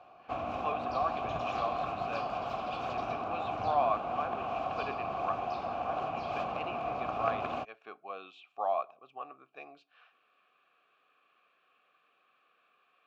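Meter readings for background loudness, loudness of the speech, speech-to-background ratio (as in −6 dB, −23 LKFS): −36.0 LKFS, −38.5 LKFS, −2.5 dB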